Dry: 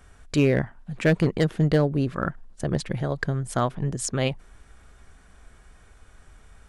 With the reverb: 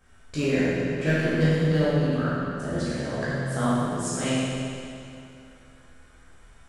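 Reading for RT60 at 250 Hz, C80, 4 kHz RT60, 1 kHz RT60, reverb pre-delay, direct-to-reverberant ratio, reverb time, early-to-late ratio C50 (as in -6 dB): 2.6 s, -2.5 dB, 2.4 s, 2.6 s, 12 ms, -11.0 dB, 2.6 s, -5.0 dB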